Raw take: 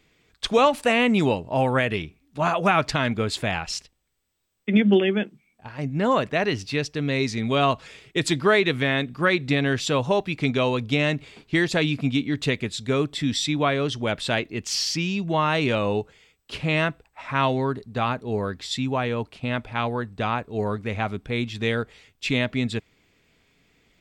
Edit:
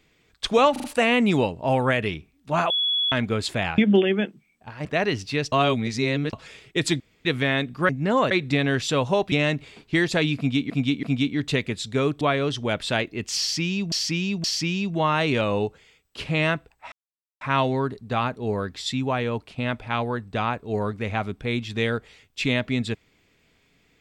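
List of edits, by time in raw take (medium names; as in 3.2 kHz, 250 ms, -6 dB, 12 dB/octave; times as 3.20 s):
0.72 s: stutter 0.04 s, 4 plays
2.58–3.00 s: bleep 3.38 kHz -20 dBFS
3.66–4.76 s: delete
5.83–6.25 s: move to 9.29 s
6.92–7.73 s: reverse
8.40–8.65 s: room tone
10.30–10.92 s: delete
11.97–12.30 s: loop, 3 plays
13.15–13.59 s: delete
14.78–15.30 s: loop, 3 plays
17.26 s: insert silence 0.49 s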